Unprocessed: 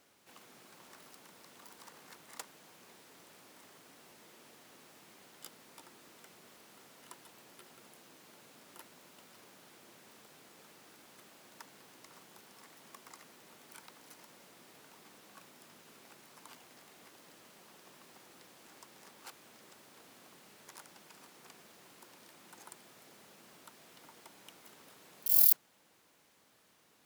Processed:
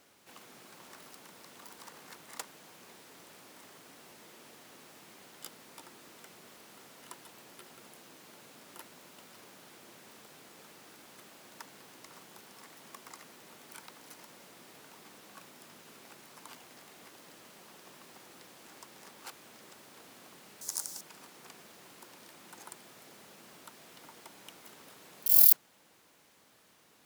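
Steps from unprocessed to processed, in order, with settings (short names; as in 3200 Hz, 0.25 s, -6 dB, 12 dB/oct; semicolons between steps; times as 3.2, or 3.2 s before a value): 20.61–21.01 resonant high shelf 4200 Hz +14 dB, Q 1.5; gain +4 dB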